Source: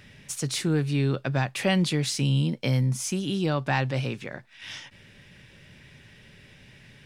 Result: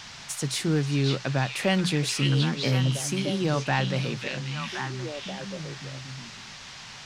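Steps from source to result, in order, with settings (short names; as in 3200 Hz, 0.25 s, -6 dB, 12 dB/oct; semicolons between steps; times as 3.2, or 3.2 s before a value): notches 60/120/180 Hz; delay with a stepping band-pass 0.534 s, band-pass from 3300 Hz, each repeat -1.4 oct, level 0 dB; band noise 680–6000 Hz -44 dBFS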